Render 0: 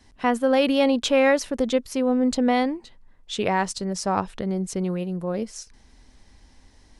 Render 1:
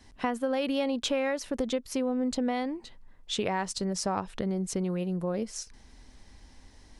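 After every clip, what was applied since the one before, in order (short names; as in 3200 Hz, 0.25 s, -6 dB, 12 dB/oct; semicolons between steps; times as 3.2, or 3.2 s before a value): compressor 4:1, threshold -27 dBFS, peak gain reduction 11.5 dB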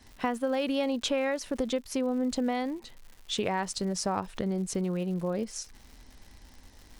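crackle 180/s -42 dBFS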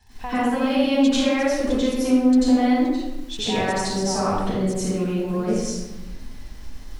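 reverb RT60 1.0 s, pre-delay 85 ms, DRR -11.5 dB; gain -7.5 dB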